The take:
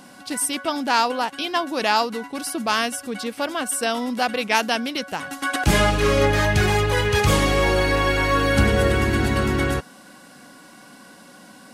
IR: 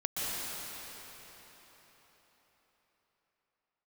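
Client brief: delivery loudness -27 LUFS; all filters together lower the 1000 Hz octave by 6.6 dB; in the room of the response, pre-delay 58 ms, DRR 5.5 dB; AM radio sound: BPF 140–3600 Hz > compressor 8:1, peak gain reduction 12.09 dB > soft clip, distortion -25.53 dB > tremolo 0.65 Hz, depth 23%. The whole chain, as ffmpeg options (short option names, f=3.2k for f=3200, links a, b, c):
-filter_complex "[0:a]equalizer=f=1k:t=o:g=-8.5,asplit=2[a][b];[1:a]atrim=start_sample=2205,adelay=58[c];[b][c]afir=irnorm=-1:irlink=0,volume=-13dB[d];[a][d]amix=inputs=2:normalize=0,highpass=140,lowpass=3.6k,acompressor=threshold=-27dB:ratio=8,asoftclip=threshold=-19dB,tremolo=f=0.65:d=0.23,volume=5.5dB"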